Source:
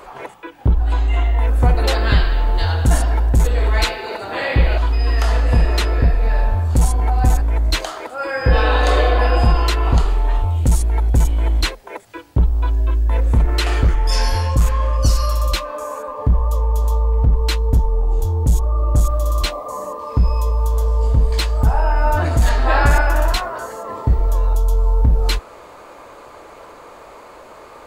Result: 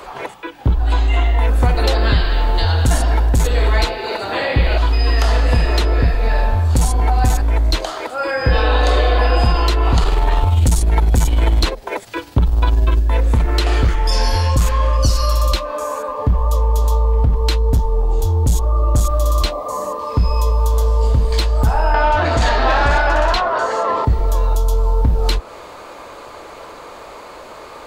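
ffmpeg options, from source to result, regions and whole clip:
ffmpeg -i in.wav -filter_complex "[0:a]asettb=1/sr,asplit=3[link_01][link_02][link_03];[link_01]atrim=end=9.984[link_04];[link_02]atrim=start=9.98:end=13.02,asetpts=PTS-STARTPTS,afade=type=in:duration=0.004:curve=qsin,afade=type=out:start_time=3.036:duration=0.004:curve=qsin,acontrast=78,tremolo=f=20:d=0.45[link_05];[link_03]atrim=start=13.016[link_06];[link_04][link_05]acrossfade=duration=0.004:curve1=hsin:curve2=qsin[link_07];[link_07][link_06]acrossfade=duration=0.004:curve1=qsin:curve2=hsin,asettb=1/sr,asplit=3[link_08][link_09][link_10];[link_08]atrim=end=21.944[link_11];[link_09]atrim=start=21.94:end=24.05,asetpts=PTS-STARTPTS,afade=type=in:duration=0.004:curve=qsin,afade=type=out:start_time=2.106:duration=0.004:curve=qsin,lowpass=6100,asplit=2[link_12][link_13];[link_13]highpass=frequency=720:poles=1,volume=18dB,asoftclip=type=tanh:threshold=-2.5dB[link_14];[link_12][link_14]amix=inputs=2:normalize=0,lowpass=frequency=4300:poles=1,volume=-6dB[link_15];[link_10]atrim=start=24.046[link_16];[link_11][link_15]acrossfade=duration=0.004:curve1=hsin:curve2=qsin[link_17];[link_17][link_16]acrossfade=duration=0.004:curve1=qsin:curve2=hsin,equalizer=frequency=4100:width_type=o:width=1.2:gain=5,acrossover=split=86|1000[link_18][link_19][link_20];[link_18]acompressor=threshold=-18dB:ratio=4[link_21];[link_19]acompressor=threshold=-21dB:ratio=4[link_22];[link_20]acompressor=threshold=-27dB:ratio=4[link_23];[link_21][link_22][link_23]amix=inputs=3:normalize=0,volume=4dB" out.wav

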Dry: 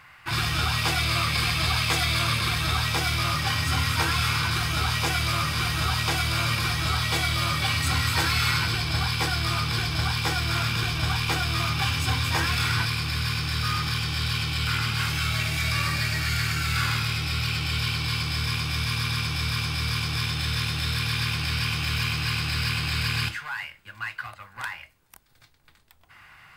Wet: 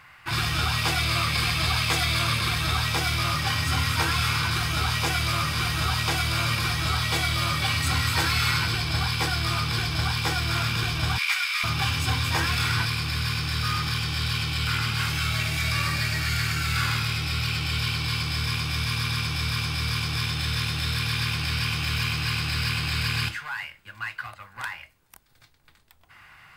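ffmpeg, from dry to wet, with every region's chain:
ffmpeg -i in.wav -filter_complex "[0:a]asettb=1/sr,asplit=3[link_01][link_02][link_03];[link_01]atrim=end=11.184[link_04];[link_02]atrim=start=11.18:end=11.64,asetpts=PTS-STARTPTS,afade=type=in:duration=0.004:curve=qsin,afade=type=out:start_time=0.456:duration=0.004:curve=qsin,highpass=frequency=1200:width=0.5412,highpass=frequency=1200:width=1.3066,equalizer=frequency=2200:width_type=o:width=0.29:gain=10[link_05];[link_03]atrim=start=11.636[link_06];[link_04][link_05]acrossfade=duration=0.004:curve1=hsin:curve2=qsin[link_07];[link_07][link_06]acrossfade=duration=0.004:curve1=qsin:curve2=hsin" out.wav

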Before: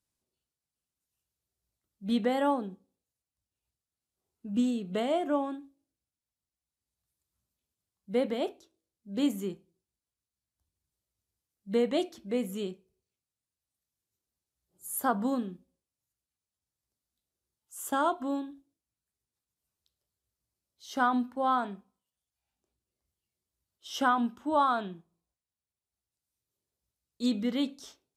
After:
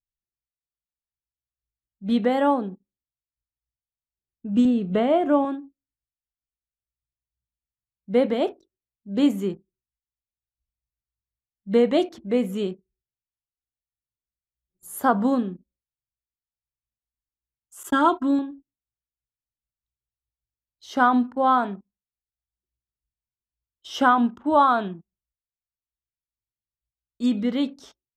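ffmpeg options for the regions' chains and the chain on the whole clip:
ffmpeg -i in.wav -filter_complex "[0:a]asettb=1/sr,asplit=3[link_01][link_02][link_03];[link_01]atrim=end=4.654[link_04];[link_02]atrim=start=4.65:end=5.45,asetpts=PTS-STARTPTS,afade=type=in:duration=0.004:curve=qsin,afade=type=out:start_time=0.796:duration=0.004:curve=qsin,acrossover=split=3300[link_05][link_06];[link_06]acompressor=threshold=-58dB:ratio=4:attack=1:release=60[link_07];[link_05][link_07]amix=inputs=2:normalize=0,lowshelf=frequency=120:gain=8.5[link_08];[link_03]atrim=start=5.446[link_09];[link_04][link_08]acrossfade=duration=0.004:curve1=hsin:curve2=qsin[link_10];[link_10][link_09]acrossfade=duration=0.004:curve1=qsin:curve2=hsin,asettb=1/sr,asplit=3[link_11][link_12][link_13];[link_11]atrim=end=17.834[link_14];[link_12]atrim=start=17.83:end=18.39,asetpts=PTS-STARTPTS,afade=type=in:duration=0.004:curve=qsin,afade=type=out:start_time=0.556:duration=0.004:curve=qsin,agate=range=-33dB:threshold=-39dB:ratio=3:release=100:detection=peak,equalizer=frequency=640:width_type=o:width=0.45:gain=-9,aecho=1:1:3.1:0.68,atrim=end_sample=24696[link_15];[link_13]atrim=start=18.386[link_16];[link_14][link_15]acrossfade=duration=0.004:curve1=hsin:curve2=qsin[link_17];[link_17][link_16]acrossfade=duration=0.004:curve1=qsin:curve2=hsin,asettb=1/sr,asplit=3[link_18][link_19][link_20];[link_18]atrim=end=24.884[link_21];[link_19]atrim=start=24.88:end=27.37,asetpts=PTS-STARTPTS,afade=type=in:duration=0.004:curve=qsin,afade=type=out:start_time=2.486:duration=0.004:curve=qsin,asuperstop=centerf=4000:order=4:qfactor=5.8,equalizer=frequency=470:width_type=o:width=0.3:gain=-7[link_22];[link_20]atrim=start=27.366[link_23];[link_21][link_22]acrossfade=duration=0.004:curve1=hsin:curve2=qsin[link_24];[link_24][link_23]acrossfade=duration=0.004:curve1=qsin:curve2=hsin,anlmdn=0.000631,highshelf=frequency=5000:gain=-11.5,dynaudnorm=framelen=900:gausssize=5:maxgain=4dB,volume=4.5dB" out.wav

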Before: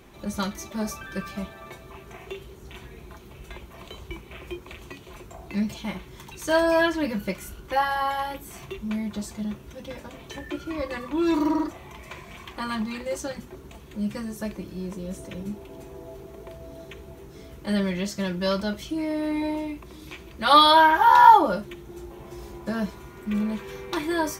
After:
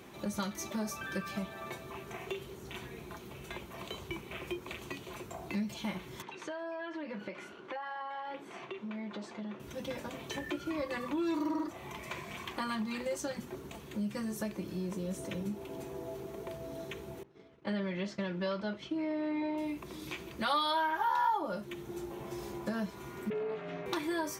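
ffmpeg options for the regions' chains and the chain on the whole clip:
ffmpeg -i in.wav -filter_complex "[0:a]asettb=1/sr,asplit=3[link_01][link_02][link_03];[link_01]atrim=end=6.224[link_04];[link_02]atrim=start=6.22:end=9.6,asetpts=PTS-STARTPTS,afade=type=in:duration=0.004:curve=qsin,afade=type=out:start_time=3.376:duration=0.004:curve=qsin,highpass=290,lowpass=2800,acompressor=threshold=-36dB:ratio=20:attack=3.2:release=140:knee=1:detection=peak[link_05];[link_03]atrim=start=9.596[link_06];[link_04][link_05]acrossfade=duration=0.004:curve1=hsin:curve2=qsin[link_07];[link_07][link_06]acrossfade=duration=0.004:curve1=qsin:curve2=hsin,asettb=1/sr,asplit=3[link_08][link_09][link_10];[link_08]atrim=end=17.234[link_11];[link_09]atrim=start=17.23:end=19.58,asetpts=PTS-STARTPTS,afade=type=in:duration=0.004:curve=qsin,afade=type=out:start_time=2.346:duration=0.004:curve=qsin,lowshelf=frequency=96:gain=-11,agate=range=-33dB:threshold=-38dB:ratio=3:release=100:detection=peak,lowpass=3200[link_12];[link_10]atrim=start=19.576[link_13];[link_11][link_12]acrossfade=duration=0.004:curve1=hsin:curve2=qsin[link_14];[link_14][link_13]acrossfade=duration=0.004:curve1=qsin:curve2=hsin,asettb=1/sr,asplit=3[link_15][link_16][link_17];[link_15]atrim=end=23.304[link_18];[link_16]atrim=start=23.3:end=23.86,asetpts=PTS-STARTPTS,afade=type=in:duration=0.004:curve=qsin,afade=type=out:start_time=0.556:duration=0.004:curve=qsin,aeval=exprs='val(0)*sin(2*PI*220*n/s)':channel_layout=same,aeval=exprs='val(0)+0.00631*sin(2*PI*410*n/s)':channel_layout=same,highpass=130,lowpass=2800[link_19];[link_17]atrim=start=23.856[link_20];[link_18][link_19]acrossfade=duration=0.004:curve1=hsin:curve2=qsin[link_21];[link_21][link_20]acrossfade=duration=0.004:curve1=qsin:curve2=hsin,highpass=110,acompressor=threshold=-34dB:ratio=3" out.wav

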